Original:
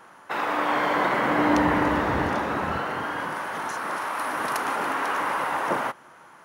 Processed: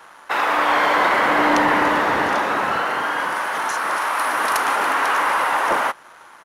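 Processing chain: high-pass 690 Hz 6 dB/octave; waveshaping leveller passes 1; resampled via 32 kHz; trim +5.5 dB

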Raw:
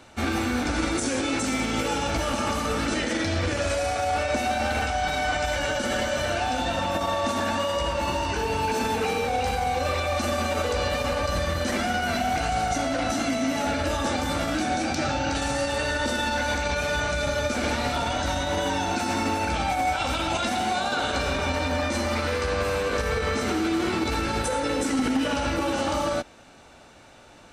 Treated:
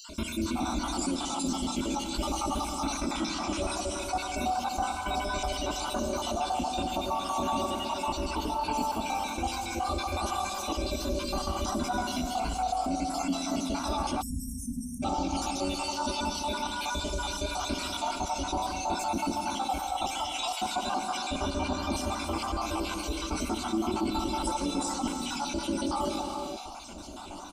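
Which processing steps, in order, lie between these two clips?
random holes in the spectrogram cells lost 66%; gated-style reverb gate 490 ms flat, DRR 6 dB; spectral selection erased 14.22–15.03 s, 260–7800 Hz; harmony voices -7 st -6 dB; static phaser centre 480 Hz, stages 6; level flattener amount 50%; trim -3.5 dB

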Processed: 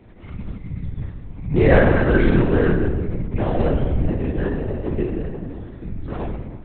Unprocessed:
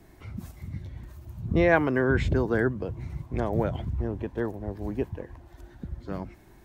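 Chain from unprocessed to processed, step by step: in parallel at -9.5 dB: sample-rate reducer 2.3 kHz, jitter 0%; on the sum: simulated room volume 910 m³, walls mixed, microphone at 2.7 m; LPC vocoder at 8 kHz whisper; trim -1 dB

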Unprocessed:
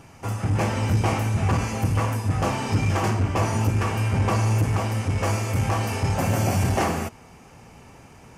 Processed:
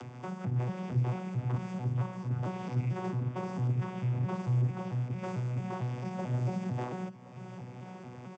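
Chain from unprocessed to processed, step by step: vocoder on a broken chord bare fifth, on B2, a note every 223 ms; high-pass 160 Hz 6 dB/octave; upward compressor, threshold -26 dBFS; on a send: delay 1072 ms -18.5 dB; on the sum: trim -5 dB

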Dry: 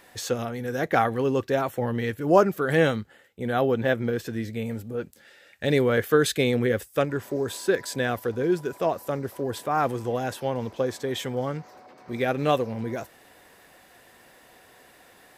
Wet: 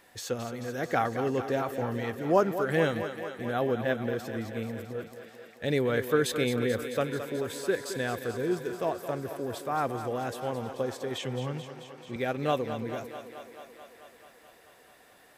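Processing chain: 11.18–12.16 s: cabinet simulation 120–8500 Hz, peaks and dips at 130 Hz +9 dB, 660 Hz -9 dB, 1.3 kHz -4 dB, 2.7 kHz +8 dB; thinning echo 218 ms, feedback 76%, high-pass 200 Hz, level -10 dB; trim -5.5 dB

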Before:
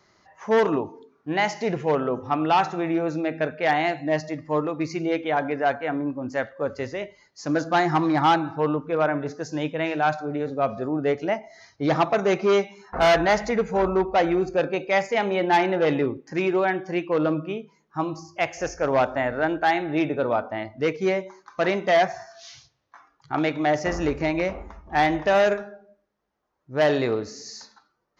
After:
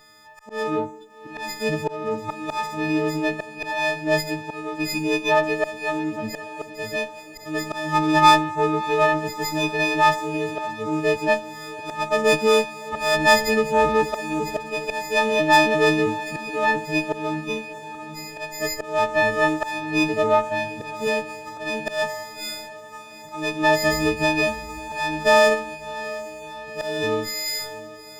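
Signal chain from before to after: partials quantised in pitch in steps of 6 st; slow attack 376 ms; echo that smears into a reverb 710 ms, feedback 60%, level -15 dB; sliding maximum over 3 samples; trim +2 dB

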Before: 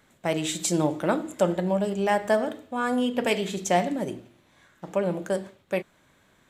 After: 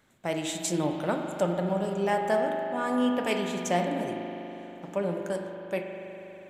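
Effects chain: spring tank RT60 3.8 s, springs 40 ms, chirp 60 ms, DRR 3.5 dB; trim -4.5 dB

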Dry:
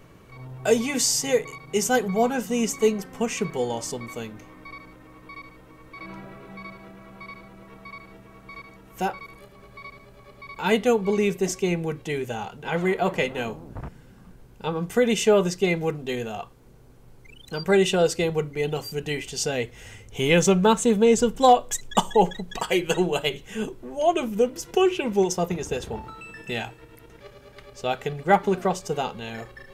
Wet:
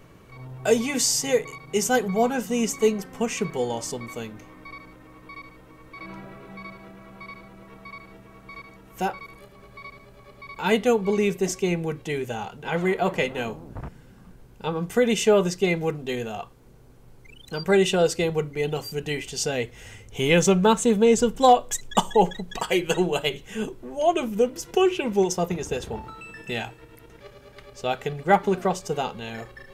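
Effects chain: short-mantissa float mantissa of 8-bit

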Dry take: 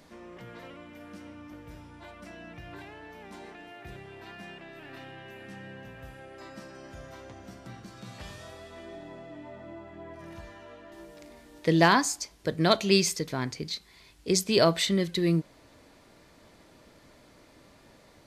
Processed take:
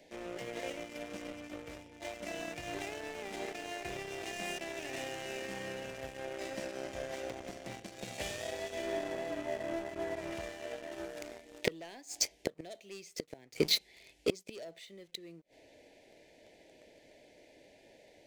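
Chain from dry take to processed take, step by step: Butterworth band-stop 1.2 kHz, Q 0.86; three-band isolator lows -16 dB, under 390 Hz, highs -21 dB, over 3.7 kHz; waveshaping leveller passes 2; inverted gate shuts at -22 dBFS, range -32 dB; resonant high shelf 5.3 kHz +7 dB, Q 1.5; trim +7 dB

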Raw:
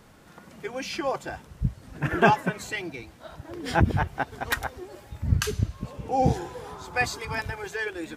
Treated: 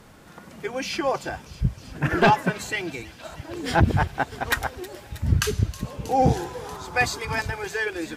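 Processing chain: sine folder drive 6 dB, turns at -3.5 dBFS; feedback echo behind a high-pass 318 ms, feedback 83%, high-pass 3.3 kHz, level -14 dB; trim -6 dB

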